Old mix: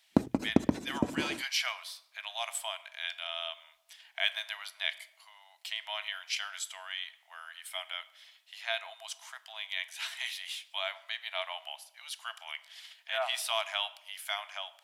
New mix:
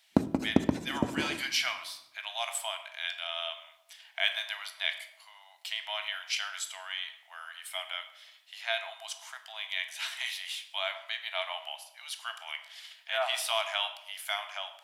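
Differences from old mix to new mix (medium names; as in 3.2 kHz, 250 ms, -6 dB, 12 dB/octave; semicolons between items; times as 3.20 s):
speech: send +8.5 dB; background: send on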